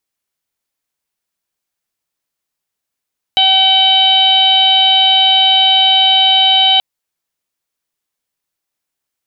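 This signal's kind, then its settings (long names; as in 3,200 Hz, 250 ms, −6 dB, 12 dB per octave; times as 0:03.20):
steady harmonic partials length 3.43 s, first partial 764 Hz, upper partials −16/−9/5.5/0.5/−18.5 dB, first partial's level −14.5 dB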